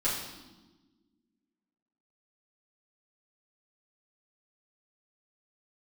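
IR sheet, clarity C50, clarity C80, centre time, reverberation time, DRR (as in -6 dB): 3.0 dB, 5.5 dB, 52 ms, 1.3 s, -10.5 dB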